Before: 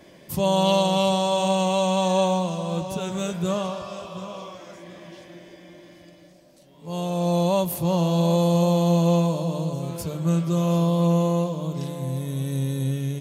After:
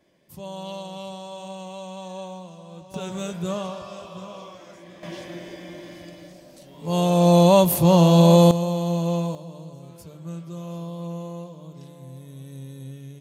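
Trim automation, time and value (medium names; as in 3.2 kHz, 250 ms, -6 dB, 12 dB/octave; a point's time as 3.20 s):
-15 dB
from 2.94 s -3 dB
from 5.03 s +7 dB
from 8.51 s -4.5 dB
from 9.35 s -13 dB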